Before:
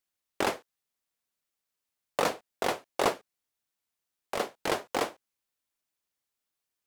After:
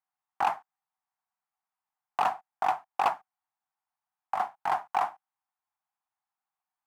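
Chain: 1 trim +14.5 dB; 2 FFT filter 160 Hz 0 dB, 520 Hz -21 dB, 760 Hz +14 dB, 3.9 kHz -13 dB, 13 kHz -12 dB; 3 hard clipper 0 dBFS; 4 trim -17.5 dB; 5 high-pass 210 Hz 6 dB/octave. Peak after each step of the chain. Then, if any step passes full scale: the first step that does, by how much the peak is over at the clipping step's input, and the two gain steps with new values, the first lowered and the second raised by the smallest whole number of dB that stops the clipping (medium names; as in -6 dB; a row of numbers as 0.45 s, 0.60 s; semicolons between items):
+2.0 dBFS, +10.0 dBFS, 0.0 dBFS, -17.5 dBFS, -15.5 dBFS; step 1, 10.0 dB; step 1 +4.5 dB, step 4 -7.5 dB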